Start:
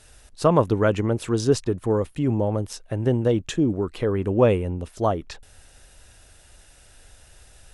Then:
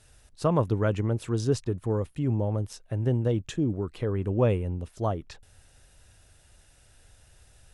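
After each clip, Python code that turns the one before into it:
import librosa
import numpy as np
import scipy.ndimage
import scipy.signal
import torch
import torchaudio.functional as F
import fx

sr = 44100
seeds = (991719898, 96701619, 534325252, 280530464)

y = fx.peak_eq(x, sr, hz=110.0, db=6.5, octaves=1.4)
y = y * librosa.db_to_amplitude(-7.5)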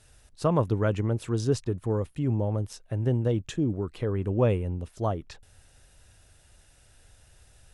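y = x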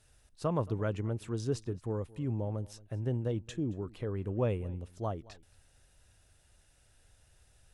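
y = x + 10.0 ** (-21.5 / 20.0) * np.pad(x, (int(223 * sr / 1000.0), 0))[:len(x)]
y = y * librosa.db_to_amplitude(-7.5)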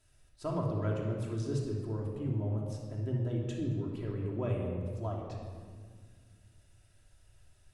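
y = fx.room_shoebox(x, sr, seeds[0], volume_m3=2700.0, walls='mixed', distance_m=2.9)
y = y * librosa.db_to_amplitude(-6.0)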